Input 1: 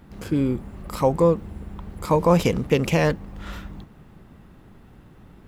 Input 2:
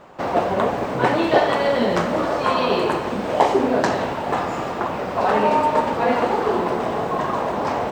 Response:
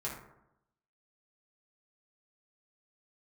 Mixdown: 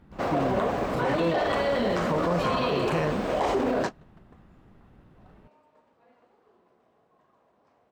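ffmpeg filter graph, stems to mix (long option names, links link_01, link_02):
-filter_complex "[0:a]highshelf=frequency=5400:gain=-11.5,volume=-6.5dB,asplit=2[link_01][link_02];[1:a]bandreject=frequency=880:width=12,volume=-3.5dB[link_03];[link_02]apad=whole_len=349030[link_04];[link_03][link_04]sidechaingate=range=-39dB:threshold=-47dB:ratio=16:detection=peak[link_05];[link_01][link_05]amix=inputs=2:normalize=0,alimiter=limit=-17dB:level=0:latency=1:release=23"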